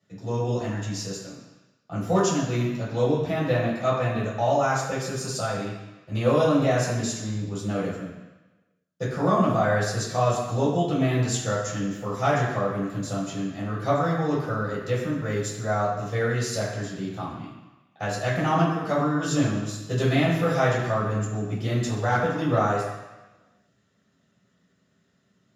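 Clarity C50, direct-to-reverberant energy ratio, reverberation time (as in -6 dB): 2.0 dB, -8.5 dB, 1.1 s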